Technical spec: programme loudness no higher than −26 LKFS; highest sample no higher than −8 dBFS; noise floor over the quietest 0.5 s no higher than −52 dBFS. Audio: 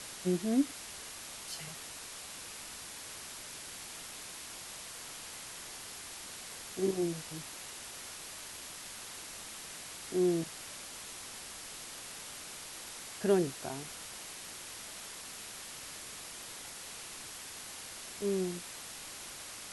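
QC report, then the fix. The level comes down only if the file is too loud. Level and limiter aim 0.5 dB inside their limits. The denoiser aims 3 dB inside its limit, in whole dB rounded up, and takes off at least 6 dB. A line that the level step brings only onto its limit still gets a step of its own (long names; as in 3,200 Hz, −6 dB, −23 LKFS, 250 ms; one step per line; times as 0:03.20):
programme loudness −39.0 LKFS: in spec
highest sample −16.0 dBFS: in spec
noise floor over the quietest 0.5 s −46 dBFS: out of spec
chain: broadband denoise 9 dB, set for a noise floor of −46 dBFS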